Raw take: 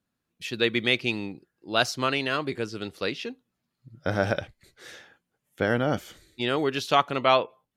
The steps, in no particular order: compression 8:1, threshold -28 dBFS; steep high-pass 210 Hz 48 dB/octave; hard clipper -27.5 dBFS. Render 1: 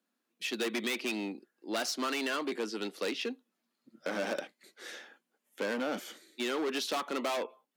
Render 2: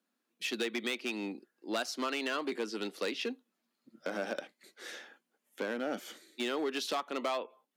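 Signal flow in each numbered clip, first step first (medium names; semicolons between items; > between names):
hard clipper > steep high-pass > compression; compression > hard clipper > steep high-pass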